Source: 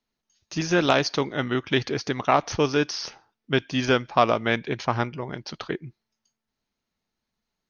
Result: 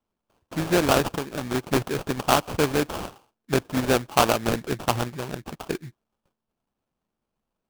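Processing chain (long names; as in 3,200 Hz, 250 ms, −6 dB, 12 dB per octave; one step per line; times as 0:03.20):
0:01.08–0:01.54: downward compressor, threshold −25 dBFS, peak gain reduction 7 dB
sample-rate reduction 2,000 Hz, jitter 20%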